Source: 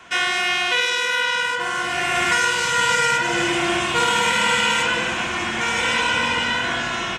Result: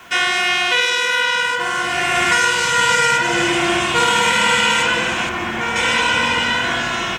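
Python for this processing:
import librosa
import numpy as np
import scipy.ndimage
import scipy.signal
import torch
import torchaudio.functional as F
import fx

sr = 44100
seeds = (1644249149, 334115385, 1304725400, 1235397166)

y = fx.high_shelf(x, sr, hz=3100.0, db=-11.0, at=(5.29, 5.76))
y = fx.quant_dither(y, sr, seeds[0], bits=10, dither='triangular')
y = y * 10.0 ** (3.5 / 20.0)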